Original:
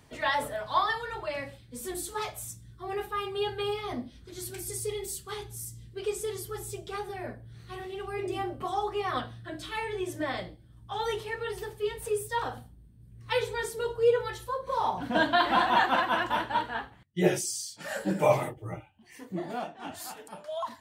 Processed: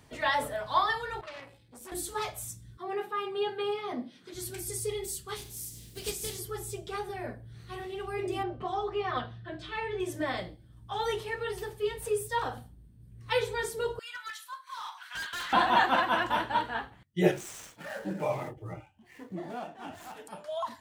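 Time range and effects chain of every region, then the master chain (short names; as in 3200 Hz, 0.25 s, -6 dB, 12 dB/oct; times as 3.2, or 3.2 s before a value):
1.21–1.92 HPF 57 Hz 6 dB/oct + resonator 170 Hz, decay 0.56 s, mix 50% + core saturation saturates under 2500 Hz
2.77–4.34 HPF 170 Hz 24 dB/oct + high shelf 4700 Hz -10.5 dB + mismatched tape noise reduction encoder only
5.35–6.38 spectral contrast lowered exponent 0.51 + bell 1200 Hz -14.5 dB 2.1 oct + de-hum 356.4 Hz, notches 37
8.43–10 LPF 4200 Hz + notch comb 280 Hz
13.99–15.53 steep high-pass 1200 Hz + overloaded stage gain 34.5 dB
17.31–20.16 median filter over 9 samples + compressor 1.5:1, threshold -40 dBFS
whole clip: dry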